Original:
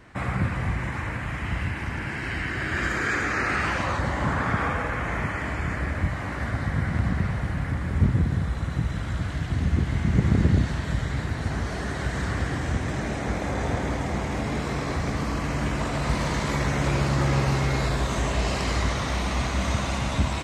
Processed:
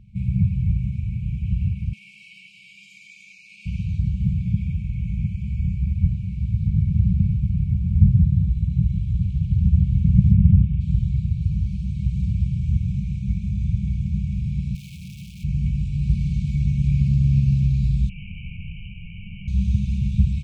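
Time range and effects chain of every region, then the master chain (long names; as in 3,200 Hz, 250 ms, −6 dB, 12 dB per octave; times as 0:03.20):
0:01.93–0:03.66: high-pass filter 470 Hz 24 dB per octave + envelope flattener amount 70%
0:10.33–0:10.81: Savitzky-Golay smoothing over 25 samples + highs frequency-modulated by the lows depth 0.3 ms
0:14.75–0:15.44: sign of each sample alone + high-pass filter 500 Hz 6 dB per octave
0:18.09–0:19.48: spectral tilt +4.5 dB per octave + voice inversion scrambler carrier 3,000 Hz
whole clip: high-shelf EQ 2,300 Hz −9.5 dB; brick-wall band-stop 210–2,200 Hz; tilt shelving filter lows +8 dB; level −1 dB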